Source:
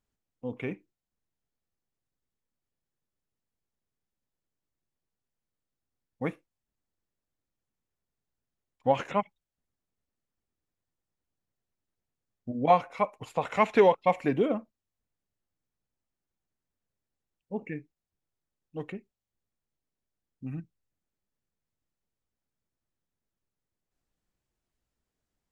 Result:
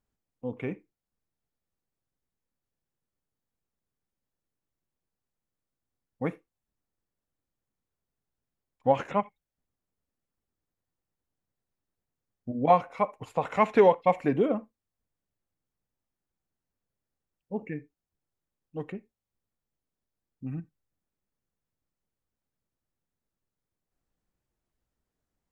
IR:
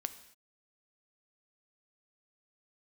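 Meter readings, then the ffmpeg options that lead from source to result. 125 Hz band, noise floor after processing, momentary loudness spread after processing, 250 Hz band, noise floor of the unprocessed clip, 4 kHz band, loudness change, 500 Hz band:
+1.5 dB, under -85 dBFS, 20 LU, +1.0 dB, under -85 dBFS, n/a, +0.5 dB, +1.0 dB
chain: -filter_complex "[0:a]asplit=2[a][b];[1:a]atrim=start_sample=2205,atrim=end_sample=3969,lowpass=2.2k[c];[b][c]afir=irnorm=-1:irlink=0,volume=-3dB[d];[a][d]amix=inputs=2:normalize=0,volume=-3dB"

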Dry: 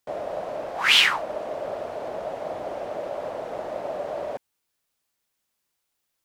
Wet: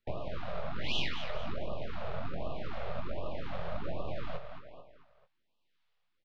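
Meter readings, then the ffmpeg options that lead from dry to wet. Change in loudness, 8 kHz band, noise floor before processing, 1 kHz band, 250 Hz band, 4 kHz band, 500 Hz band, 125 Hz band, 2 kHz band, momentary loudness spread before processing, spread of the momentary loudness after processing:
-14.0 dB, under -20 dB, -79 dBFS, -11.5 dB, -2.0 dB, -17.0 dB, -11.0 dB, +8.0 dB, -18.0 dB, 16 LU, 10 LU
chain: -filter_complex "[0:a]acrossover=split=1200[a][b];[a]aeval=exprs='val(0)*(1-0.5/2+0.5/2*cos(2*PI*1.3*n/s))':c=same[c];[b]aeval=exprs='val(0)*(1-0.5/2-0.5/2*cos(2*PI*1.3*n/s))':c=same[d];[c][d]amix=inputs=2:normalize=0,aeval=exprs='max(val(0),0)':c=same,lowpass=f=3.9k:w=0.5412,lowpass=f=3.9k:w=1.3066,acompressor=threshold=-33dB:ratio=6,aecho=1:1:220|440|660|880:0.316|0.133|0.0558|0.0234,acrossover=split=300|3000[e][f][g];[f]acompressor=threshold=-52dB:ratio=2[h];[e][h][g]amix=inputs=3:normalize=0,asplit=2[i][j];[j]adelay=23,volume=-8.5dB[k];[i][k]amix=inputs=2:normalize=0,afftfilt=real='re*(1-between(b*sr/1024,260*pow(1800/260,0.5+0.5*sin(2*PI*1.3*pts/sr))/1.41,260*pow(1800/260,0.5+0.5*sin(2*PI*1.3*pts/sr))*1.41))':imag='im*(1-between(b*sr/1024,260*pow(1800/260,0.5+0.5*sin(2*PI*1.3*pts/sr))/1.41,260*pow(1800/260,0.5+0.5*sin(2*PI*1.3*pts/sr))*1.41))':win_size=1024:overlap=0.75,volume=6.5dB"

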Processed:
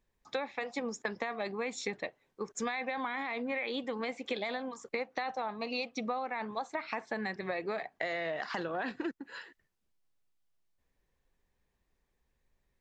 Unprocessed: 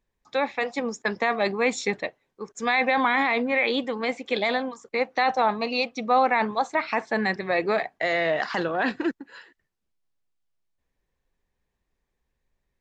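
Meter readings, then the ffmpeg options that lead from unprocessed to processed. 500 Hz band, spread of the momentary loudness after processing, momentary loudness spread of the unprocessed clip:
-11.0 dB, 5 LU, 9 LU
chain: -af "acompressor=threshold=-32dB:ratio=10"

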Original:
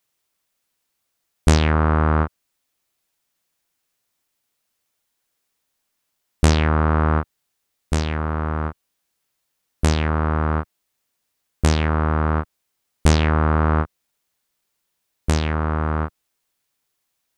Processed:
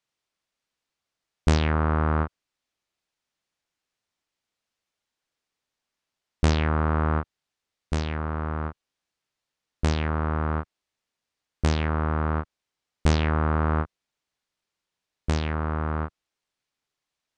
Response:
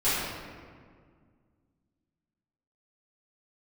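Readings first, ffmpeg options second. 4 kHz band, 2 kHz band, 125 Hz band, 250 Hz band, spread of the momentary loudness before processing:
-6.0 dB, -5.5 dB, -5.5 dB, -5.5 dB, 10 LU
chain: -af "lowpass=5.9k,volume=-5.5dB"

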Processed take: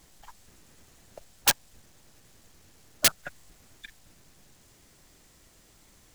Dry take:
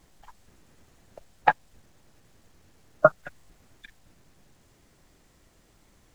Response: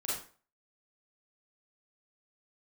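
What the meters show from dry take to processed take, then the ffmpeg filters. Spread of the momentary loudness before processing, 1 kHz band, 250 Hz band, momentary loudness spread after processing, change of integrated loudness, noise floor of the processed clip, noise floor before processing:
5 LU, -12.5 dB, -3.5 dB, 3 LU, 0.0 dB, -59 dBFS, -62 dBFS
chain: -af "aeval=exprs='(mod(7.5*val(0)+1,2)-1)/7.5':c=same,highshelf=f=2.9k:g=8.5"

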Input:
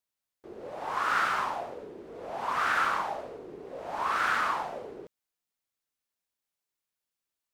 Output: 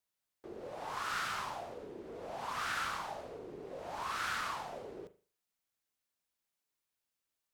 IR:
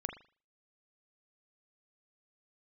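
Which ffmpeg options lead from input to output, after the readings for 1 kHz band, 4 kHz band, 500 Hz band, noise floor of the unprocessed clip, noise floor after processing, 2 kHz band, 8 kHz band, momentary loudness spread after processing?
-10.0 dB, -3.0 dB, -6.5 dB, under -85 dBFS, under -85 dBFS, -9.5 dB, -0.5 dB, 13 LU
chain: -filter_complex "[0:a]acrossover=split=160|3000[a][b][c];[b]acompressor=threshold=-46dB:ratio=2[d];[a][d][c]amix=inputs=3:normalize=0,asplit=2[e][f];[1:a]atrim=start_sample=2205[g];[f][g]afir=irnorm=-1:irlink=0,volume=-4dB[h];[e][h]amix=inputs=2:normalize=0,volume=-4dB"

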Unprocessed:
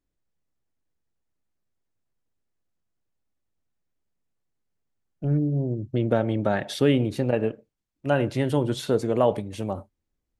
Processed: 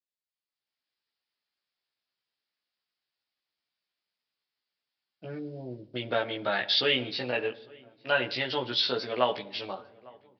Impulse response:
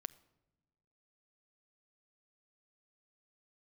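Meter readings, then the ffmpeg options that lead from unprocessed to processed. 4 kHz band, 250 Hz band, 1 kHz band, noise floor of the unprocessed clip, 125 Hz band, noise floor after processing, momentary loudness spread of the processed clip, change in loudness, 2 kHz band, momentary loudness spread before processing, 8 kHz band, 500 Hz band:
+10.0 dB, -13.5 dB, -1.5 dB, -81 dBFS, -18.0 dB, under -85 dBFS, 17 LU, -4.0 dB, +4.5 dB, 10 LU, under -10 dB, -6.5 dB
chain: -filter_complex "[0:a]aderivative,dynaudnorm=f=250:g=5:m=15dB,asplit=2[a][b];[b]adelay=852,lowpass=f=1.4k:p=1,volume=-23.5dB,asplit=2[c][d];[d]adelay=852,lowpass=f=1.4k:p=1,volume=0.52,asplit=2[e][f];[f]adelay=852,lowpass=f=1.4k:p=1,volume=0.52[g];[a][c][e][g]amix=inputs=4:normalize=0,asplit=2[h][i];[1:a]atrim=start_sample=2205,asetrate=31311,aresample=44100,adelay=16[j];[i][j]afir=irnorm=-1:irlink=0,volume=1.5dB[k];[h][k]amix=inputs=2:normalize=0,aresample=11025,aresample=44100,volume=-1.5dB"

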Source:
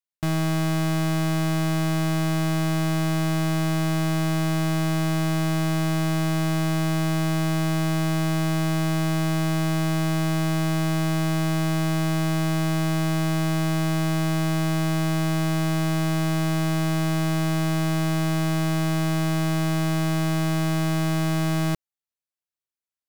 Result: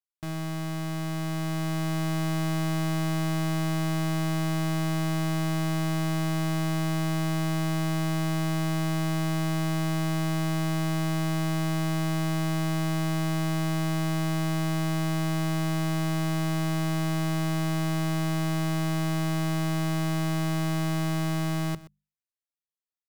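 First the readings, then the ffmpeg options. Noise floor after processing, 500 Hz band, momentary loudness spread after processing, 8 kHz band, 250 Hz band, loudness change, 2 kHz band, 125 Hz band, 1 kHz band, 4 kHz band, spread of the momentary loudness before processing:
under -85 dBFS, -5.0 dB, 1 LU, -4.0 dB, -4.5 dB, -4.0 dB, -4.5 dB, -4.0 dB, -3.5 dB, -4.0 dB, 0 LU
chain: -filter_complex "[0:a]bandreject=f=50:t=h:w=6,bandreject=f=100:t=h:w=6,bandreject=f=150:t=h:w=6,bandreject=f=200:t=h:w=6,dynaudnorm=f=280:g=11:m=5dB,asplit=2[a][b];[b]aecho=0:1:124:0.126[c];[a][c]amix=inputs=2:normalize=0,volume=-9dB"

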